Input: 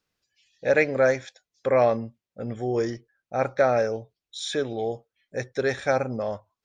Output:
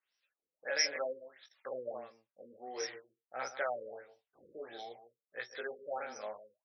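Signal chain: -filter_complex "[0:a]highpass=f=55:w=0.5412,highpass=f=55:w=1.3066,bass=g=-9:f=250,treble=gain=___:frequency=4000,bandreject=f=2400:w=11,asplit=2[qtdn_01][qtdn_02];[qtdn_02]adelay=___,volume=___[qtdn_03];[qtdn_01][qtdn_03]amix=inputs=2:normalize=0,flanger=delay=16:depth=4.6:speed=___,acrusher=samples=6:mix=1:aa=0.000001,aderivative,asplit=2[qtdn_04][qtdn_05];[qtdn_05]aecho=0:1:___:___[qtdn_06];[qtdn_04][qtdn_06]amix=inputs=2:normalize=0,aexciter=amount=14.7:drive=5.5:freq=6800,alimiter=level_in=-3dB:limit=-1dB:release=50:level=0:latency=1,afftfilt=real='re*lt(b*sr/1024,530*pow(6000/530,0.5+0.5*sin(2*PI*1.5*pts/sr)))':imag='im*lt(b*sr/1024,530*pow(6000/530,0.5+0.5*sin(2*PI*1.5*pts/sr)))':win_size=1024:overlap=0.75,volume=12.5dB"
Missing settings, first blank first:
1, 24, -12.5dB, 0.59, 153, 0.237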